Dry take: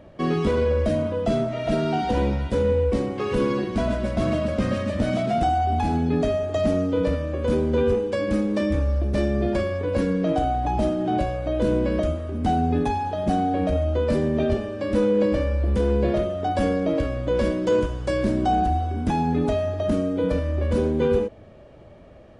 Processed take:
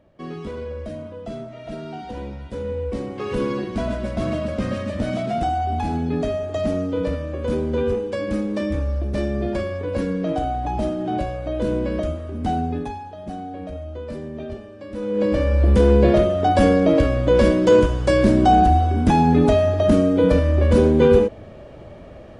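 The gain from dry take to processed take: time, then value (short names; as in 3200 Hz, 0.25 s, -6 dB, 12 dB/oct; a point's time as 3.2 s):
2.33 s -10 dB
3.31 s -1 dB
12.58 s -1 dB
13.1 s -10 dB
14.96 s -10 dB
15.23 s +0.5 dB
15.64 s +7 dB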